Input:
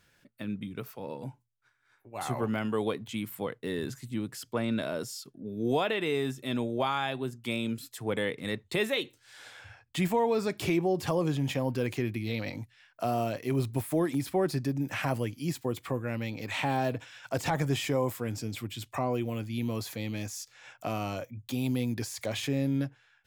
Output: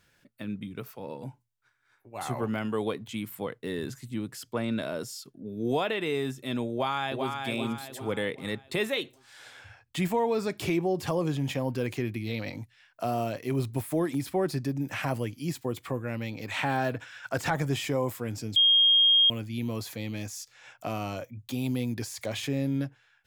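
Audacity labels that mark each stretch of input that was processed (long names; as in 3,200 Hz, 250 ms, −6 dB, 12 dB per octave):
6.720000	7.340000	delay throw 390 ms, feedback 45%, level −4.5 dB
16.560000	17.530000	parametric band 1,500 Hz +7.5 dB 0.63 octaves
18.560000	19.300000	beep over 3,240 Hz −17 dBFS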